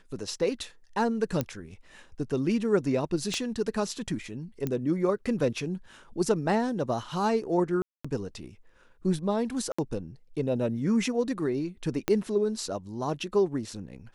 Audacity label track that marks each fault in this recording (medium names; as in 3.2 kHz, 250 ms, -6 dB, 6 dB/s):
1.410000	1.410000	pop -14 dBFS
3.340000	3.340000	pop -18 dBFS
4.670000	4.670000	pop -17 dBFS
7.820000	8.040000	dropout 225 ms
9.720000	9.790000	dropout 65 ms
12.080000	12.080000	pop -10 dBFS